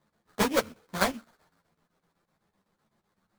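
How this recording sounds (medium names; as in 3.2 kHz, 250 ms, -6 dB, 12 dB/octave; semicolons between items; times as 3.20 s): chopped level 7.9 Hz, depth 65%, duty 70%; aliases and images of a low sample rate 2.8 kHz, jitter 20%; a shimmering, thickened sound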